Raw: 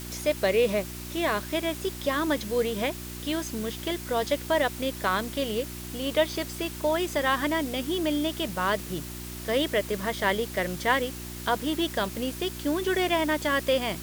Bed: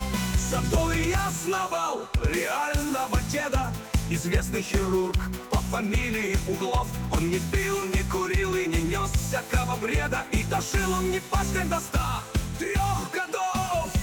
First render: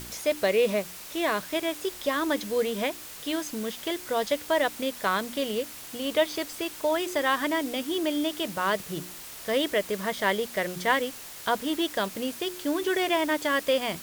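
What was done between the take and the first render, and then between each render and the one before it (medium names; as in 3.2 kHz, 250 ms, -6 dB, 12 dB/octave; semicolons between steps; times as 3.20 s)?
de-hum 60 Hz, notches 6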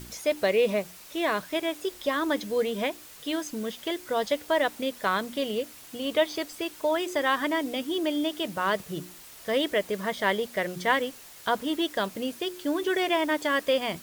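noise reduction 6 dB, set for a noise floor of -42 dBFS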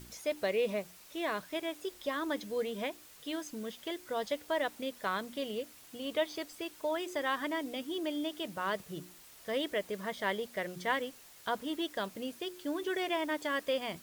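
trim -8 dB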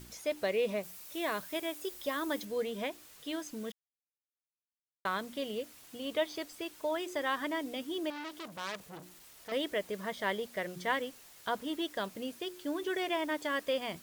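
0.83–2.45 s: treble shelf 8.4 kHz +10 dB; 3.72–5.05 s: mute; 8.10–9.52 s: transformer saturation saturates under 3.7 kHz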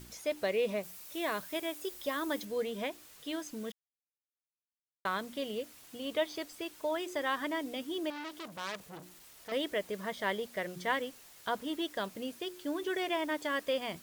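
no audible change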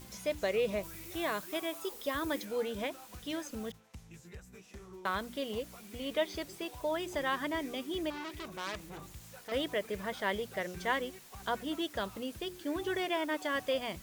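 add bed -25.5 dB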